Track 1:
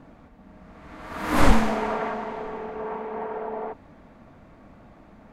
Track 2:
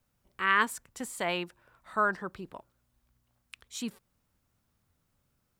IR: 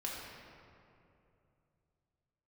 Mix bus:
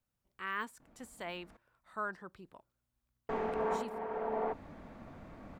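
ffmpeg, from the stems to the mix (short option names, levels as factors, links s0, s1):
-filter_complex "[0:a]adelay=800,volume=0.891,asplit=3[s0][s1][s2];[s0]atrim=end=1.57,asetpts=PTS-STARTPTS,afade=t=out:st=1.566:d=0.004:c=hsin[s3];[s1]atrim=start=1.57:end=3.29,asetpts=PTS-STARTPTS,volume=0[s4];[s2]atrim=start=3.29,asetpts=PTS-STARTPTS,afade=t=in:d=0.004:c=hsin[s5];[s3][s4][s5]concat=n=3:v=0:a=1[s6];[1:a]deesser=0.9,volume=0.282,asplit=2[s7][s8];[s8]apad=whole_len=270272[s9];[s6][s9]sidechaincompress=threshold=0.00282:ratio=12:attack=33:release=932[s10];[s10][s7]amix=inputs=2:normalize=0"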